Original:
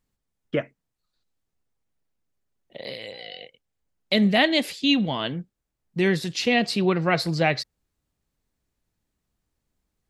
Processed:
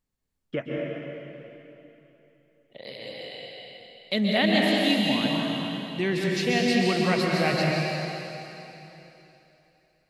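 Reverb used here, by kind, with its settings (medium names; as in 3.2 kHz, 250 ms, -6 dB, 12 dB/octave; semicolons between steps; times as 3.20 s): plate-style reverb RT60 3.2 s, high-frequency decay 1×, pre-delay 115 ms, DRR -3 dB; trim -5.5 dB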